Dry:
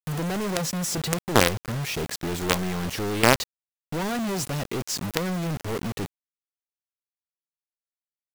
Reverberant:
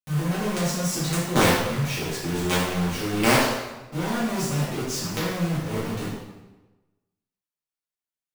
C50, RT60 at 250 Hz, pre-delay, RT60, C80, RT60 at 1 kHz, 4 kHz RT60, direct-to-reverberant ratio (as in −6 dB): −0.5 dB, 1.2 s, 3 ms, 1.1 s, 3.0 dB, 1.1 s, 0.90 s, −11.0 dB